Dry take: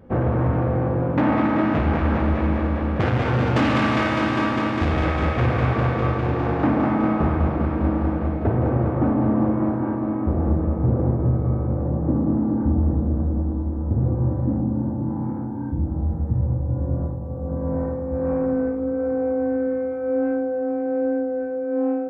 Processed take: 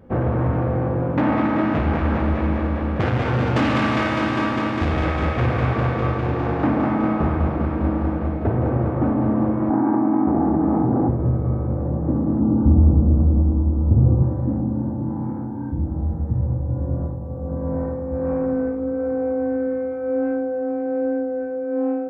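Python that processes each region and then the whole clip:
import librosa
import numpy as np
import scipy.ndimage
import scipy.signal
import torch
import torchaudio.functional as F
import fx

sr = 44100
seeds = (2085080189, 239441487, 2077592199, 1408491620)

y = fx.chain(x, sr, fx.cabinet(low_hz=180.0, low_slope=12, high_hz=2200.0, hz=(280.0, 530.0, 800.0), db=(8, -8, 9)),
    fx.env_flatten(amount_pct=100), at=(9.7, 11.09))
y = fx.chain(y, sr, fx.steep_lowpass(hz=1500.0, slope=96),
    fx.low_shelf(hz=240.0, db=7.5), at=(12.4, 14.23))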